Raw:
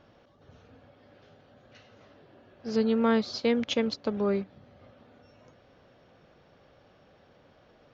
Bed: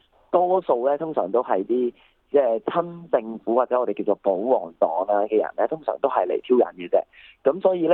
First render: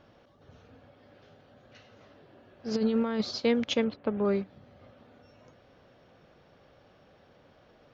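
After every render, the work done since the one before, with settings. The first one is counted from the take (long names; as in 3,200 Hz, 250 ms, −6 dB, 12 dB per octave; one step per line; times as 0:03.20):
0:02.71–0:03.31: compressor whose output falls as the input rises −26 dBFS, ratio −0.5
0:03.84–0:04.25: low-pass filter 2,800 Hz 24 dB per octave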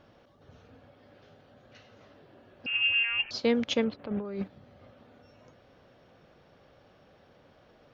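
0:02.66–0:03.31: voice inversion scrambler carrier 3,000 Hz
0:03.99–0:04.48: compressor whose output falls as the input rises −34 dBFS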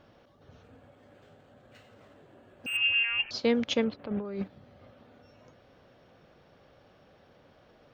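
0:00.63–0:02.77: linearly interpolated sample-rate reduction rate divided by 4×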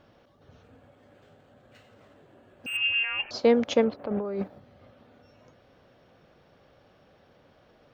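0:03.03–0:04.60: drawn EQ curve 150 Hz 0 dB, 680 Hz +9 dB, 3,300 Hz −3 dB, 11,000 Hz +5 dB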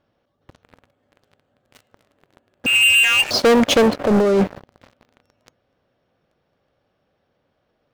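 leveller curve on the samples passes 5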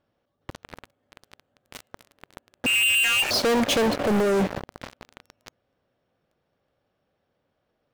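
leveller curve on the samples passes 3
brickwall limiter −19 dBFS, peak gain reduction 9.5 dB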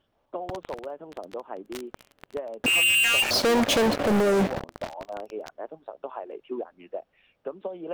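mix in bed −15.5 dB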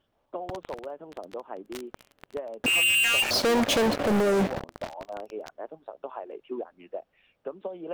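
level −1.5 dB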